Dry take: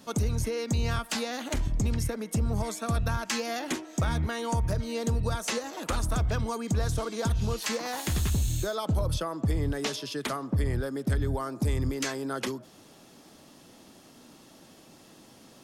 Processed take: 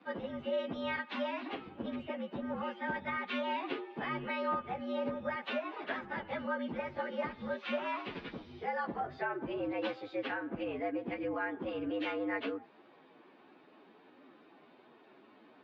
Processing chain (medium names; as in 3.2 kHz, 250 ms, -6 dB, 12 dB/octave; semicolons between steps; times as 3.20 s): frequency-domain pitch shifter +6 st; mistuned SSB -81 Hz 320–3400 Hz